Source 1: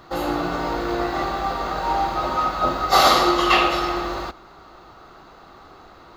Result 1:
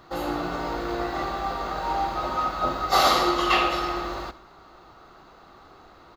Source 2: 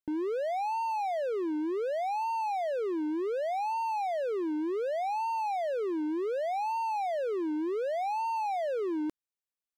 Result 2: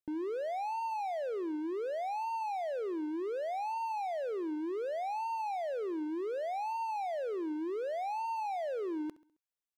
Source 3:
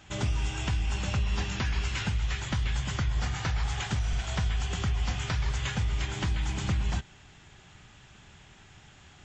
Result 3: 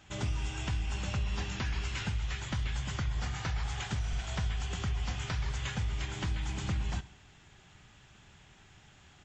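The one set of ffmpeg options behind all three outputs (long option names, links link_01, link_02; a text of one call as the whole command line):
ffmpeg -i in.wav -af "aecho=1:1:67|134|201|268:0.119|0.0535|0.0241|0.0108,volume=-4.5dB" out.wav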